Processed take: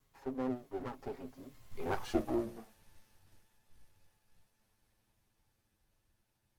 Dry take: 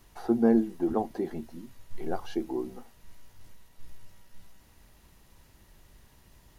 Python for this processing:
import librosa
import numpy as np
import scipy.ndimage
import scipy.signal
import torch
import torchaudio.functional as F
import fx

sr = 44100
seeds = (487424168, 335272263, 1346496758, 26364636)

y = fx.lower_of_two(x, sr, delay_ms=8.2)
y = fx.doppler_pass(y, sr, speed_mps=38, closest_m=14.0, pass_at_s=2.11)
y = y * 10.0 ** (1.0 / 20.0)